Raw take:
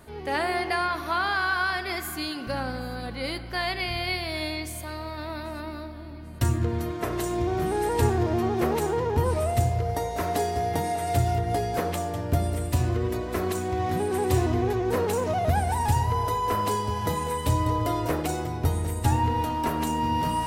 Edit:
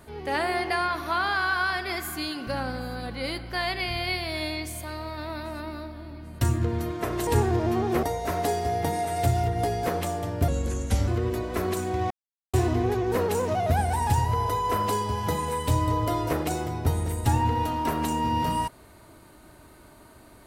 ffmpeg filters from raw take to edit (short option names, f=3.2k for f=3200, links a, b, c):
-filter_complex "[0:a]asplit=7[a][b][c][d][e][f][g];[a]atrim=end=7.272[h];[b]atrim=start=7.938:end=8.702[i];[c]atrim=start=9.938:end=12.394[j];[d]atrim=start=12.39:end=12.86,asetpts=PTS-STARTPTS,asetrate=34839,aresample=44100[k];[e]atrim=start=12.856:end=13.89,asetpts=PTS-STARTPTS,afade=t=out:st=1.03:d=0.004:c=hsin[l];[f]atrim=start=13.89:end=14.32,asetpts=PTS-STARTPTS,volume=0[m];[g]atrim=start=14.32,asetpts=PTS-STARTPTS,afade=t=in:d=0.004:c=hsin[n];[h][i]acrossfade=d=0.004:c1=hsin:c2=hsin[o];[o][j]acrossfade=d=0.004:c1=hsin:c2=hsin[p];[p][k]acrossfade=d=0.004:c1=hsin:c2=hsin[q];[l][m][n]concat=n=3:v=0:a=1[r];[q][r]acrossfade=d=0.004:c1=hsin:c2=hsin"